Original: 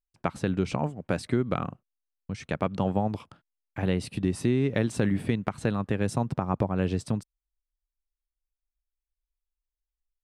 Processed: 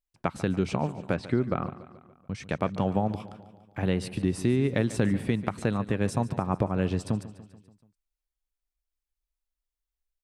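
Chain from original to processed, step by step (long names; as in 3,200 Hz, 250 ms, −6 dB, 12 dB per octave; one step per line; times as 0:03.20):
0:01.13–0:02.35: treble cut that deepens with the level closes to 2,000 Hz, closed at −25.5 dBFS
repeating echo 144 ms, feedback 57%, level −16 dB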